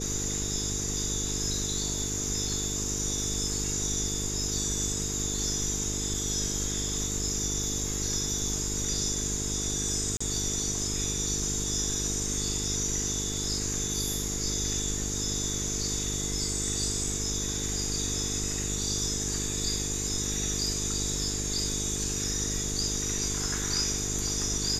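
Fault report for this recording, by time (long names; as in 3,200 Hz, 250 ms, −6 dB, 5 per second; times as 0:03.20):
mains buzz 50 Hz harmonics 9 −35 dBFS
0:10.17–0:10.21: drop-out 35 ms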